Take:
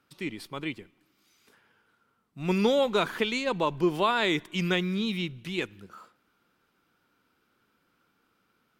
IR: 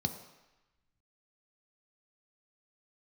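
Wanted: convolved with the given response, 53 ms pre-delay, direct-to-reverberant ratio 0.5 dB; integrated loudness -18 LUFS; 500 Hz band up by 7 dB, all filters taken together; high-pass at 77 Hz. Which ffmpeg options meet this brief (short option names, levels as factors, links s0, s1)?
-filter_complex "[0:a]highpass=77,equalizer=f=500:t=o:g=8.5,asplit=2[s0][s1];[1:a]atrim=start_sample=2205,adelay=53[s2];[s1][s2]afir=irnorm=-1:irlink=0,volume=0.668[s3];[s0][s3]amix=inputs=2:normalize=0,volume=1.12"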